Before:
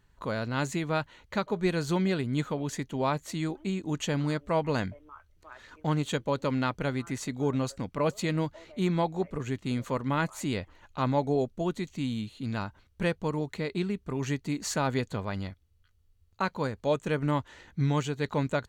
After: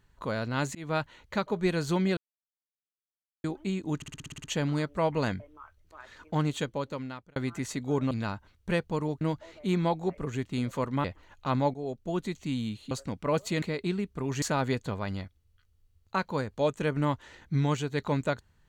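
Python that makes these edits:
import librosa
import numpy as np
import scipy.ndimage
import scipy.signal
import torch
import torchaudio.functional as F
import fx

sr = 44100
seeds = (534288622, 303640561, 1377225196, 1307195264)

y = fx.edit(x, sr, fx.fade_in_span(start_s=0.75, length_s=0.26, curve='qsin'),
    fx.silence(start_s=2.17, length_s=1.27),
    fx.stutter(start_s=3.96, slice_s=0.06, count=9),
    fx.fade_out_span(start_s=5.98, length_s=0.9),
    fx.swap(start_s=7.63, length_s=0.71, other_s=12.43, other_length_s=1.1),
    fx.cut(start_s=10.17, length_s=0.39),
    fx.fade_in_from(start_s=11.26, length_s=0.47, floor_db=-14.5),
    fx.cut(start_s=14.33, length_s=0.35), tone=tone)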